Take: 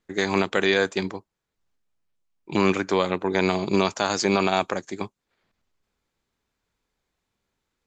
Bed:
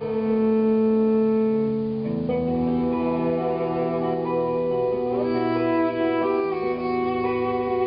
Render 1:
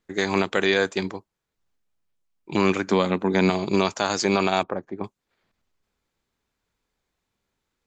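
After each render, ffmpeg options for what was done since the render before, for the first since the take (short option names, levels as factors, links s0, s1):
-filter_complex "[0:a]asettb=1/sr,asplit=3[s0][s1][s2];[s0]atrim=end=2.874[s3];[s1]atrim=start=2.87:end=3.5,asetpts=PTS-STARTPTS,afade=t=in:d=0.004:c=qsin,afade=t=out:st=0.626:d=0.004:c=qsin,equalizer=f=220:t=o:w=0.42:g=13.5[s4];[s2]atrim=start=3.496[s5];[s3][s4]acrossfade=d=0.004:c1=hsin:c2=qsin[s6];[s6][s5]acrossfade=d=0.004:c1=qsin:c2=hsin,asettb=1/sr,asplit=3[s7][s8][s9];[s7]atrim=end=4.634[s10];[s8]atrim=start=4.63:end=5.04,asetpts=PTS-STARTPTS,afade=t=in:d=0.004:c=qsin,afade=t=out:st=0.406:d=0.004:c=qsin,lowpass=1100[s11];[s9]atrim=start=5.036[s12];[s10][s11]acrossfade=d=0.004:c1=hsin:c2=qsin[s13];[s13][s12]acrossfade=d=0.004:c1=qsin:c2=hsin"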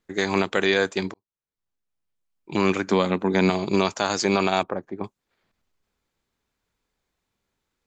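-filter_complex "[0:a]asplit=2[s0][s1];[s0]atrim=end=1.14,asetpts=PTS-STARTPTS,afade=t=out:st=1.136:d=0.004:c=hsin[s2];[s1]atrim=start=1.14,asetpts=PTS-STARTPTS,afade=t=in:d=1.64[s3];[s2][s3]concat=n=2:v=0:a=1"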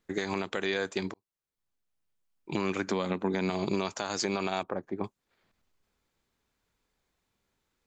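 -af "acompressor=threshold=0.0794:ratio=6,alimiter=limit=0.133:level=0:latency=1:release=384"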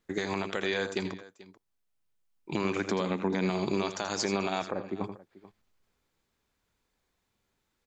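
-af "aecho=1:1:81|91|437:0.251|0.2|0.106"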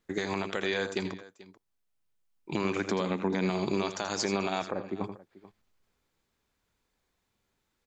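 -af anull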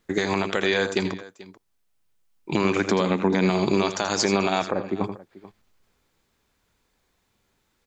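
-af "volume=2.51"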